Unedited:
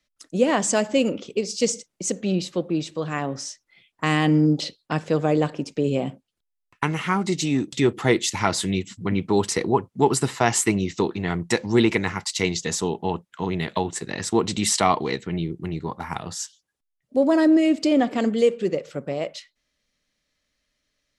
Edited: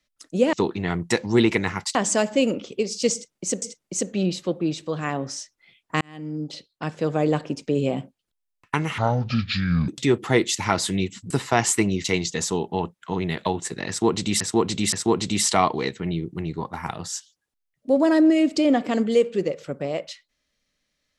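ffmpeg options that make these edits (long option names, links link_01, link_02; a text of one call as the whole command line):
ffmpeg -i in.wav -filter_complex "[0:a]asplit=11[link_01][link_02][link_03][link_04][link_05][link_06][link_07][link_08][link_09][link_10][link_11];[link_01]atrim=end=0.532[link_12];[link_02]atrim=start=10.928:end=12.352[link_13];[link_03]atrim=start=0.528:end=2.202[link_14];[link_04]atrim=start=1.708:end=4.1,asetpts=PTS-STARTPTS,afade=type=out:start_time=2.388:duration=0.004:curve=hsin[link_15];[link_05]atrim=start=4.1:end=7.074,asetpts=PTS-STARTPTS,afade=type=in:duration=1.39[link_16];[link_06]atrim=start=7.07:end=7.63,asetpts=PTS-STARTPTS,asetrate=27342,aresample=44100,atrim=end_sample=39832,asetpts=PTS-STARTPTS[link_17];[link_07]atrim=start=7.626:end=9.052[link_18];[link_08]atrim=start=10.188:end=10.932[link_19];[link_09]atrim=start=12.348:end=14.712[link_20];[link_10]atrim=start=14.188:end=14.712[link_21];[link_11]atrim=start=14.188[link_22];[link_12][link_13]acrossfade=duration=0.004:curve1=hsin:curve2=hsin[link_23];[link_23][link_14]acrossfade=duration=0.004:curve1=hsin:curve2=hsin[link_24];[link_15][link_16]concat=n=2:v=0:a=1[link_25];[link_24][link_25]acrossfade=duration=0.004:curve1=hsin:curve2=hsin[link_26];[link_26][link_17]acrossfade=duration=0.004:curve1=hsin:curve2=hsin[link_27];[link_27][link_18]acrossfade=duration=0.004:curve1=hsin:curve2=hsin[link_28];[link_28][link_19]acrossfade=duration=0.004:curve1=hsin:curve2=hsin[link_29];[link_29][link_20]acrossfade=duration=0.004:curve1=hsin:curve2=hsin[link_30];[link_30][link_21]acrossfade=duration=0.004:curve1=hsin:curve2=hsin[link_31];[link_31][link_22]acrossfade=duration=0.004:curve1=hsin:curve2=hsin" out.wav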